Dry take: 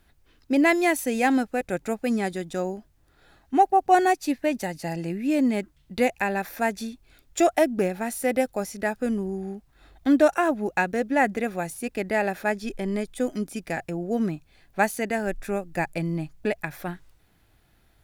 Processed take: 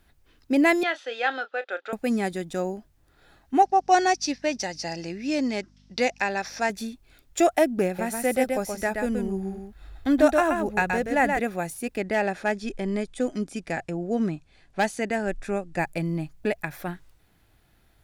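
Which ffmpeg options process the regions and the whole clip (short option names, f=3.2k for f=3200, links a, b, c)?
-filter_complex "[0:a]asettb=1/sr,asplit=3[a][b][c];[a]atrim=end=0.834[d];[b]atrim=start=0.83:end=1.93,asetpts=PTS-STARTPTS,afade=t=in:d=0.004:c=qsin,afade=t=out:st=1.096:d=0.004:c=qsin,highpass=f=500:w=0.5412,highpass=f=500:w=1.3066,equalizer=f=680:t=q:w=4:g=-5,equalizer=f=980:t=q:w=4:g=-8,equalizer=f=1.4k:t=q:w=4:g=9,equalizer=f=2.2k:t=q:w=4:g=-7,equalizer=f=3.4k:t=q:w=4:g=8,lowpass=f=4.2k:w=0.5412,lowpass=f=4.2k:w=1.3066,asplit=2[e][f];[f]adelay=30,volume=-13.5dB[g];[e][g]amix=inputs=2:normalize=0,atrim=end_sample=48510[h];[c]atrim=start=1.926[i];[d][h]acrossfade=d=0.004:c1=hsin:c2=qsin[j];[j][i]acrossfade=d=0.004:c1=qsin:c2=hsin,asettb=1/sr,asplit=3[k][l][m];[k]atrim=end=3.624[n];[l]atrim=start=3.62:end=6.7,asetpts=PTS-STARTPTS,afade=t=in:d=0.004:c=qsin,afade=t=out:st=3.076:d=0.004:c=qsin,aeval=exprs='val(0)+0.00501*(sin(2*PI*50*n/s)+sin(2*PI*2*50*n/s)/2+sin(2*PI*3*50*n/s)/3+sin(2*PI*4*50*n/s)/4+sin(2*PI*5*50*n/s)/5)':c=same,lowpass=f=5.5k:t=q:w=6.2,lowshelf=f=200:g=-12[o];[m]atrim=start=6.696[p];[n][o]acrossfade=d=0.004:c1=hsin:c2=qsin[q];[q][p]acrossfade=d=0.004:c1=qsin:c2=hsin,asettb=1/sr,asplit=3[r][s][t];[r]atrim=end=7.864[u];[s]atrim=start=7.86:end=11.39,asetpts=PTS-STARTPTS,afade=t=in:d=0.004:c=qsin,afade=t=out:st=3.526:d=0.004:c=qsin,asubboost=boost=5.5:cutoff=110,aecho=1:1:126:0.596,atrim=end_sample=155673[v];[t]atrim=start=11.386[w];[u][v]acrossfade=d=0.004:c1=hsin:c2=qsin[x];[x][w]acrossfade=d=0.004:c1=qsin:c2=hsin,asettb=1/sr,asplit=3[y][z][aa];[y]atrim=end=11.984[ab];[z]atrim=start=11.98:end=15.79,asetpts=PTS-STARTPTS,afade=t=in:d=0.004:c=qsin,afade=t=out:st=3.806:d=0.004:c=qsin,lowpass=f=9k:w=0.5412,lowpass=f=9k:w=1.3066,asoftclip=type=hard:threshold=-16dB[ac];[aa]atrim=start=15.786[ad];[ab][ac]acrossfade=d=0.004:c1=hsin:c2=qsin[ae];[ae][ad]acrossfade=d=0.004:c1=qsin:c2=hsin"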